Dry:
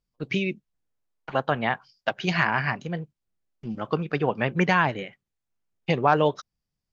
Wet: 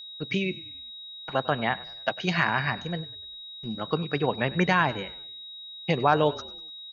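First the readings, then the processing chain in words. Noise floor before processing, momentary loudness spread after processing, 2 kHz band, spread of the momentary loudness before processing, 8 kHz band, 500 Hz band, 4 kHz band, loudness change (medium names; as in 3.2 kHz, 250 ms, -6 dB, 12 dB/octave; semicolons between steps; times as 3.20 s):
-85 dBFS, 16 LU, -1.5 dB, 15 LU, no reading, -1.5 dB, +4.5 dB, -1.5 dB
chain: frequency-shifting echo 98 ms, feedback 47%, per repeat -33 Hz, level -19.5 dB; whistle 3.8 kHz -38 dBFS; trim -1.5 dB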